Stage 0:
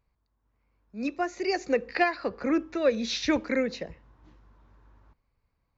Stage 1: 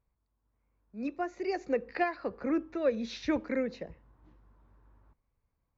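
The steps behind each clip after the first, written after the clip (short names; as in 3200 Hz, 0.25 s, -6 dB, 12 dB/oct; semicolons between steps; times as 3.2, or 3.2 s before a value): high shelf 2600 Hz -11.5 dB; gain -4 dB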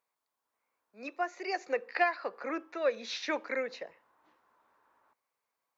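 HPF 710 Hz 12 dB/oct; gain +5 dB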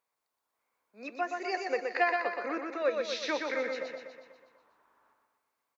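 feedback echo 0.122 s, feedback 57%, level -4.5 dB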